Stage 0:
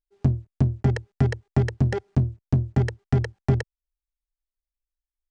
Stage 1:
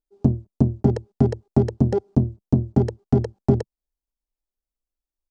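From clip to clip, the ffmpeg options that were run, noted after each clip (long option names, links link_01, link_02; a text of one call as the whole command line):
ffmpeg -i in.wav -af "firequalizer=gain_entry='entry(140,0);entry(200,9);entry(960,1);entry(1800,-13);entry(2800,-9);entry(4600,-3)':delay=0.05:min_phase=1" out.wav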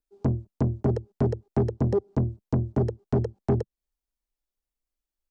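ffmpeg -i in.wav -filter_complex "[0:a]acrossover=split=480|540[link_01][link_02][link_03];[link_01]asoftclip=type=tanh:threshold=-19dB[link_04];[link_03]acompressor=threshold=-45dB:ratio=6[link_05];[link_04][link_02][link_05]amix=inputs=3:normalize=0" out.wav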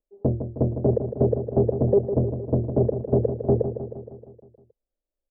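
ffmpeg -i in.wav -af "lowpass=frequency=560:width_type=q:width=3.6,aecho=1:1:156|312|468|624|780|936|1092:0.355|0.209|0.124|0.0729|0.043|0.0254|0.015" out.wav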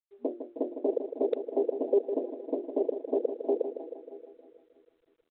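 ffmpeg -i in.wav -filter_complex "[0:a]asplit=2[link_01][link_02];[link_02]adelay=318,lowpass=frequency=870:poles=1,volume=-14.5dB,asplit=2[link_03][link_04];[link_04]adelay=318,lowpass=frequency=870:poles=1,volume=0.54,asplit=2[link_05][link_06];[link_06]adelay=318,lowpass=frequency=870:poles=1,volume=0.54,asplit=2[link_07][link_08];[link_08]adelay=318,lowpass=frequency=870:poles=1,volume=0.54,asplit=2[link_09][link_10];[link_10]adelay=318,lowpass=frequency=870:poles=1,volume=0.54[link_11];[link_01][link_03][link_05][link_07][link_09][link_11]amix=inputs=6:normalize=0,afftfilt=real='re*between(b*sr/4096,240,1100)':imag='im*between(b*sr/4096,240,1100)':win_size=4096:overlap=0.75,volume=-5.5dB" -ar 8000 -c:a adpcm_g726 -b:a 32k out.wav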